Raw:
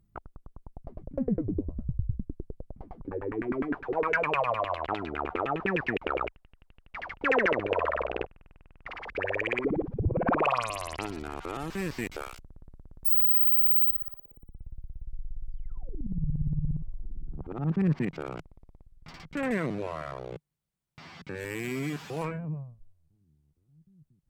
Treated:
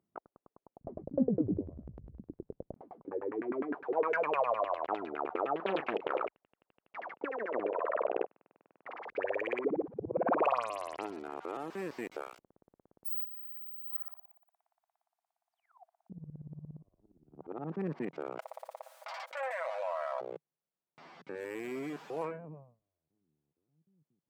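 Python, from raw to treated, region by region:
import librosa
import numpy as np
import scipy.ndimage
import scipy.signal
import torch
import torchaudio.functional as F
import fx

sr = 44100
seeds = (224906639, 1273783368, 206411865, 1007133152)

y = fx.chain(x, sr, fx.tilt_eq(slope=-4.5),
    fx.over_compress(threshold_db=-16.0, ratio=-1.0), at=(0.81, 2.74))
y = fx.chain(y, sr, fx.doubler(ms=36.0, db=-12.0),
    fx.doppler_dist(depth_ms=0.58), at=(5.56, 6.26))
y = fx.chain(y, sr, fx.highpass(hz=150.0, slope=12),
    fx.high_shelf(hz=3200.0, db=-11.0),
    fx.over_compress(threshold_db=-31.0, ratio=-1.0), at=(6.98, 9.03))
y = fx.chain(y, sr, fx.brickwall_highpass(low_hz=650.0),
    fx.over_compress(threshold_db=-27.0, ratio=-0.5), at=(13.24, 16.1))
y = fx.chain(y, sr, fx.brickwall_highpass(low_hz=520.0),
    fx.comb(ms=6.2, depth=0.49),
    fx.env_flatten(amount_pct=70), at=(18.39, 20.21))
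y = scipy.signal.sosfilt(scipy.signal.butter(2, 490.0, 'highpass', fs=sr, output='sos'), y)
y = fx.tilt_shelf(y, sr, db=9.0, hz=1100.0)
y = y * librosa.db_to_amplitude(-4.0)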